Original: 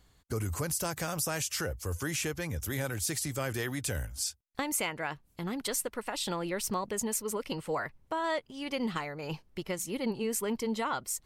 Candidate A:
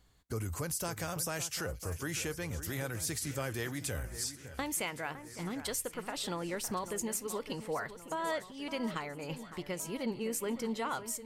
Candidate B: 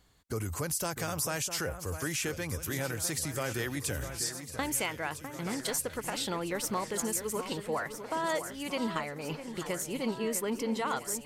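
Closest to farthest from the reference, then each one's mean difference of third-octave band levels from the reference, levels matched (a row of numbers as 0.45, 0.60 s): A, B; 4.0, 5.5 dB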